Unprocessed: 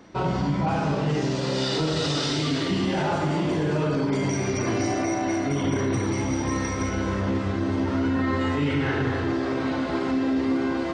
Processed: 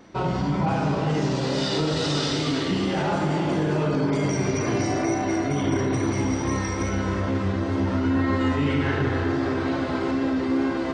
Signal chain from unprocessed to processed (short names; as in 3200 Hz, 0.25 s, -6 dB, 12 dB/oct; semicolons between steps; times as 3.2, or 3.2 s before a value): wow and flutter 23 cents; analogue delay 0.356 s, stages 4096, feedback 55%, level -8 dB